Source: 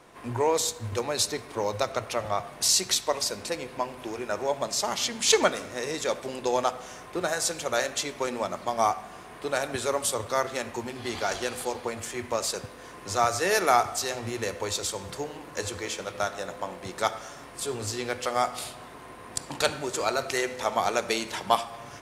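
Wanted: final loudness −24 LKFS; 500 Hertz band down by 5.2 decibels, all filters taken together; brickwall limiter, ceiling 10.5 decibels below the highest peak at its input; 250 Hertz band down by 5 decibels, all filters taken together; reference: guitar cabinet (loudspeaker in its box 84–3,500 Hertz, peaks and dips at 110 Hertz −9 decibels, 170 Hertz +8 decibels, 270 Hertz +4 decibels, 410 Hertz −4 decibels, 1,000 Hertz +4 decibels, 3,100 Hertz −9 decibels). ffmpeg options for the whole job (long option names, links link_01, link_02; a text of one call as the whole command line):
ffmpeg -i in.wav -af "equalizer=frequency=250:width_type=o:gain=-7.5,equalizer=frequency=500:width_type=o:gain=-4,alimiter=limit=-17dB:level=0:latency=1,highpass=84,equalizer=frequency=110:width_type=q:width=4:gain=-9,equalizer=frequency=170:width_type=q:width=4:gain=8,equalizer=frequency=270:width_type=q:width=4:gain=4,equalizer=frequency=410:width_type=q:width=4:gain=-4,equalizer=frequency=1000:width_type=q:width=4:gain=4,equalizer=frequency=3100:width_type=q:width=4:gain=-9,lowpass=frequency=3500:width=0.5412,lowpass=frequency=3500:width=1.3066,volume=10dB" out.wav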